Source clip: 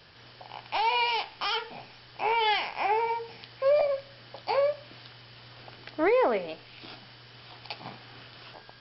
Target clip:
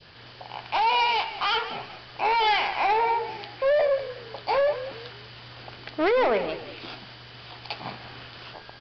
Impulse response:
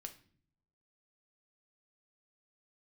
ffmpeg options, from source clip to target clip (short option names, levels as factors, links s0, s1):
-filter_complex "[0:a]adynamicequalizer=threshold=0.00891:dfrequency=1300:dqfactor=0.7:tfrequency=1300:tqfactor=0.7:attack=5:release=100:ratio=0.375:range=2:mode=boostabove:tftype=bell,aresample=11025,asoftclip=type=tanh:threshold=0.0708,aresample=44100,asplit=4[s0][s1][s2][s3];[s1]adelay=185,afreqshift=-51,volume=0.224[s4];[s2]adelay=370,afreqshift=-102,volume=0.0759[s5];[s3]adelay=555,afreqshift=-153,volume=0.026[s6];[s0][s4][s5][s6]amix=inputs=4:normalize=0,volume=1.78"